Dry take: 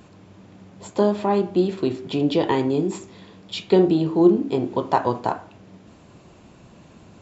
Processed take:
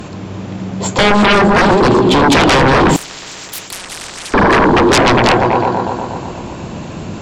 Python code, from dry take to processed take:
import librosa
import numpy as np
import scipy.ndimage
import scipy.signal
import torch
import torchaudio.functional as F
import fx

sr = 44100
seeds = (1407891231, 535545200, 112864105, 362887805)

y = fx.echo_opening(x, sr, ms=121, hz=400, octaves=2, feedback_pct=70, wet_db=-6)
y = fx.fold_sine(y, sr, drive_db=19, ceiling_db=-3.5)
y = fx.spectral_comp(y, sr, ratio=10.0, at=(2.96, 4.34))
y = y * 10.0 ** (-2.5 / 20.0)